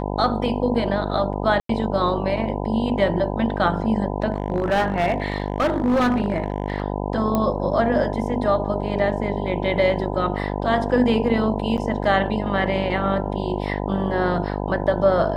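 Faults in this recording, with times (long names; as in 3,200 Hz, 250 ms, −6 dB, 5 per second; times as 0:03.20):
mains buzz 50 Hz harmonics 20 −26 dBFS
0:01.60–0:01.69: drop-out 93 ms
0:04.32–0:06.82: clipping −15.5 dBFS
0:07.35: click −9 dBFS
0:11.77–0:11.78: drop-out 8.7 ms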